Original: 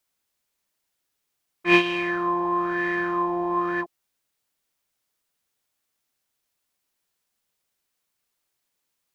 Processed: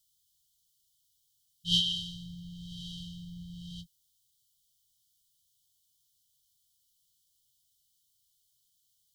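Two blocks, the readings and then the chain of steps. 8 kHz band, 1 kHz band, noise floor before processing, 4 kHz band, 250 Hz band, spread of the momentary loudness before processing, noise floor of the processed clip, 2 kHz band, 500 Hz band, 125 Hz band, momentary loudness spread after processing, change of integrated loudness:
no reading, under -40 dB, -79 dBFS, +5.0 dB, -16.5 dB, 10 LU, -74 dBFS, under -40 dB, under -40 dB, -1.5 dB, 19 LU, -7.5 dB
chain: brick-wall FIR band-stop 170–2900 Hz; trim +5.5 dB

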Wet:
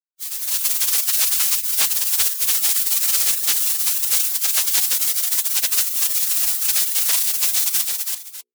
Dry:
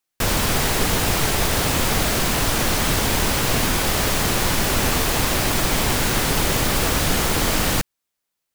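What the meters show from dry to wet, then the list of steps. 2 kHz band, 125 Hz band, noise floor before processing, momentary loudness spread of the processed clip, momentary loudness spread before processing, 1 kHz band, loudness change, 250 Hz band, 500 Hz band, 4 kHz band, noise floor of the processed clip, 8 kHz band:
-8.5 dB, under -35 dB, -80 dBFS, 3 LU, 0 LU, -15.5 dB, +3.0 dB, under -25 dB, under -20 dB, -1.0 dB, -37 dBFS, +5.0 dB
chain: multi-tap echo 332/596 ms -6/-17 dB; peak limiter -9.5 dBFS, peak gain reduction 4 dB; spectral gate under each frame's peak -25 dB weak; level rider gain up to 11.5 dB; treble shelf 3.2 kHz +7.5 dB; hum notches 60/120/180/240/300/360/420/480 Hz; trim -6.5 dB

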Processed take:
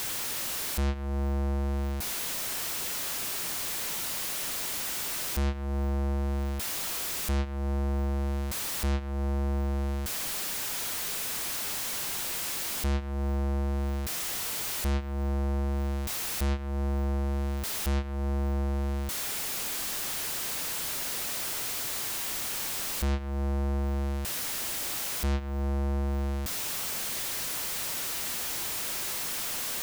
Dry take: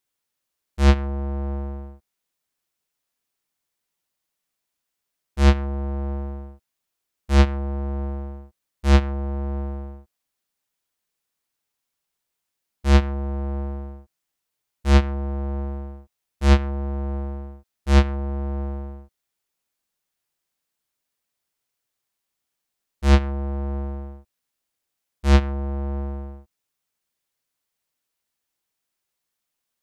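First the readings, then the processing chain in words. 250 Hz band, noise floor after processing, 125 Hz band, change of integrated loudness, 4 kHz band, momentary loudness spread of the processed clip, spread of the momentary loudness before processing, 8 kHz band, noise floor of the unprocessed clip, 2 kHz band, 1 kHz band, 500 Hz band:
-6.5 dB, -33 dBFS, -7.0 dB, -6.5 dB, +4.5 dB, 2 LU, 17 LU, no reading, -82 dBFS, -1.5 dB, -5.0 dB, -6.0 dB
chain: jump at every zero crossing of -28 dBFS; compression 10:1, threshold -29 dBFS, peak gain reduction 18 dB; trim +1.5 dB

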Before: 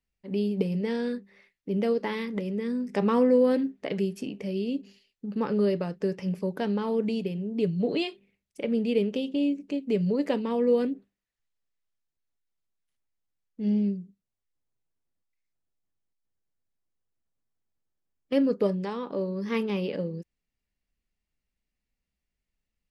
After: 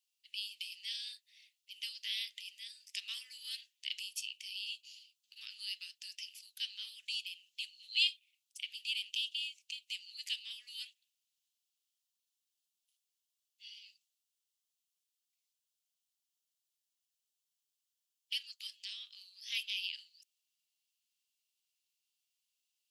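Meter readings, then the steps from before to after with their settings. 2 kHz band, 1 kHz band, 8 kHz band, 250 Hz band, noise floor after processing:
-3.0 dB, under -40 dB, no reading, under -40 dB, under -85 dBFS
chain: elliptic high-pass 2.9 kHz, stop band 80 dB; trim +8 dB

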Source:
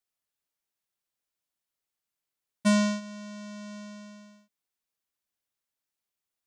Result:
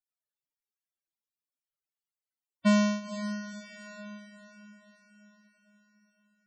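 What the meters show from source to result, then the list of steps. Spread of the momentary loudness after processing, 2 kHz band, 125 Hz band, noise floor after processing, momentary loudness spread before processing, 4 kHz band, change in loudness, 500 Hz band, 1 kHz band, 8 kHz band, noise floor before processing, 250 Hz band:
21 LU, 0.0 dB, no reading, under -85 dBFS, 19 LU, -2.0 dB, -2.0 dB, 0.0 dB, 0.0 dB, -4.0 dB, under -85 dBFS, 0.0 dB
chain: echo that smears into a reverb 505 ms, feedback 50%, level -11.5 dB; loudest bins only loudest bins 32

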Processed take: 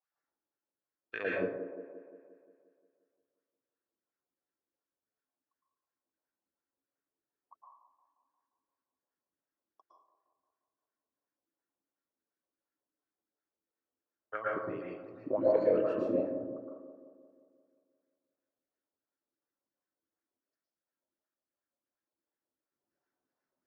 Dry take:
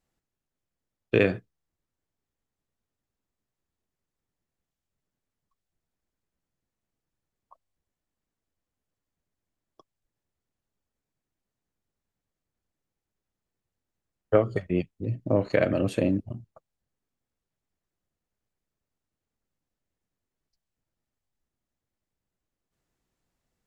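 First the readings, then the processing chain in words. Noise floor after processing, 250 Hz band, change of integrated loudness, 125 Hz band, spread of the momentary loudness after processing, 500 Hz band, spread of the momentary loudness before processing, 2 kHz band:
under -85 dBFS, -9.0 dB, -7.5 dB, -20.0 dB, 21 LU, -4.5 dB, 10 LU, -6.5 dB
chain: peaking EQ 5.3 kHz +14 dB 0.89 oct; wah-wah 2.8 Hz 290–1600 Hz, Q 4.5; feedback echo behind a band-pass 176 ms, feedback 58%, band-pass 470 Hz, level -8 dB; plate-style reverb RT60 0.64 s, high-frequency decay 0.6×, pre-delay 100 ms, DRR -5 dB; trim -2.5 dB

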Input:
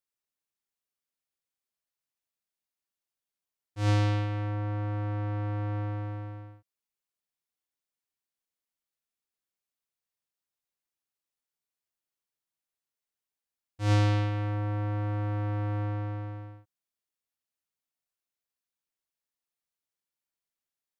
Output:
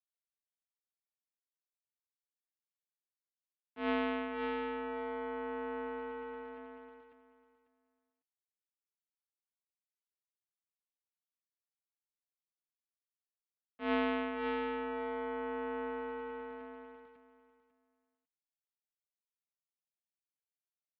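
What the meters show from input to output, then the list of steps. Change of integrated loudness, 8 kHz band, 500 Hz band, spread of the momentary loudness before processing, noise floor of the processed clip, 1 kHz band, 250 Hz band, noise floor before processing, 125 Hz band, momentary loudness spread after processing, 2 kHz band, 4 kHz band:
-7.5 dB, no reading, +2.0 dB, 14 LU, under -85 dBFS, -1.0 dB, -3.0 dB, under -85 dBFS, under -35 dB, 16 LU, +0.5 dB, -5.5 dB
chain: bit crusher 9-bit; on a send: feedback delay 547 ms, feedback 19%, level -5 dB; on the sum: mistuned SSB -53 Hz 270–3200 Hz; trim -1 dB

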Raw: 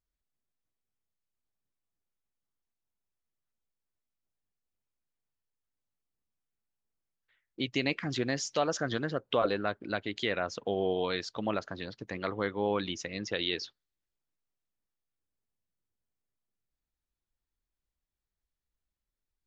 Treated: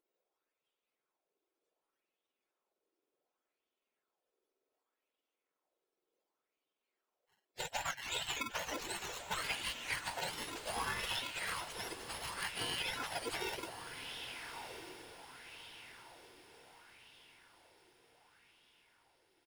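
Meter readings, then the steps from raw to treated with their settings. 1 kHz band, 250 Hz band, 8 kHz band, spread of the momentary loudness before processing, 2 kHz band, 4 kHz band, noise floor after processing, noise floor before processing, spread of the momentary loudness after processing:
-5.0 dB, -17.0 dB, no reading, 7 LU, -3.0 dB, -2.0 dB, under -85 dBFS, under -85 dBFS, 20 LU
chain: spectrum inverted on a logarithmic axis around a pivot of 980 Hz; in parallel at -9.5 dB: sample-and-hold 37×; on the sum: peaking EQ 3 kHz +3.5 dB 0.74 oct; delay 750 ms -22.5 dB; spectral gate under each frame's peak -20 dB weak; compression, threshold -46 dBFS, peak gain reduction 9 dB; echo that smears into a reverb 1261 ms, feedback 45%, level -8 dB; sweeping bell 0.67 Hz 350–3200 Hz +10 dB; trim +7.5 dB

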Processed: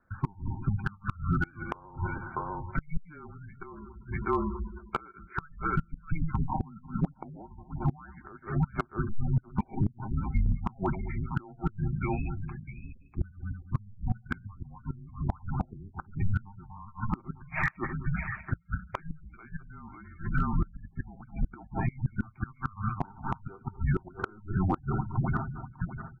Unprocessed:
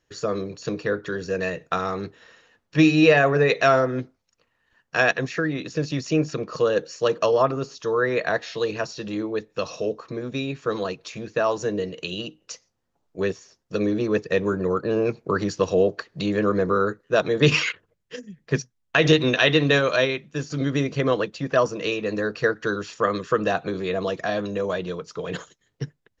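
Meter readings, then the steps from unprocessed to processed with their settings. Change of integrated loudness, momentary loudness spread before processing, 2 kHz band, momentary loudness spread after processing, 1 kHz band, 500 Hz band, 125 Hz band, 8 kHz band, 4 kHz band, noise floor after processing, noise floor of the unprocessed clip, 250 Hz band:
-10.5 dB, 14 LU, -13.5 dB, 15 LU, -8.0 dB, -21.5 dB, -1.5 dB, no reading, under -30 dB, -56 dBFS, -74 dBFS, -9.5 dB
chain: backward echo that repeats 109 ms, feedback 46%, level -13 dB; dynamic bell 640 Hz, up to -4 dB, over -32 dBFS, Q 1.2; comb 7.3 ms, depth 39%; on a send: delay 645 ms -13 dB; on the sum: peak limiter -14 dBFS, peak gain reduction 11 dB; mistuned SSB -310 Hz 190–2200 Hz; inverted gate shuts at -18 dBFS, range -28 dB; in parallel at -2.5 dB: compression 16:1, threshold -37 dBFS, peak gain reduction 15 dB; on the sum: spectral gate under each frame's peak -20 dB strong; overload inside the chain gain 19 dB; trim +1.5 dB

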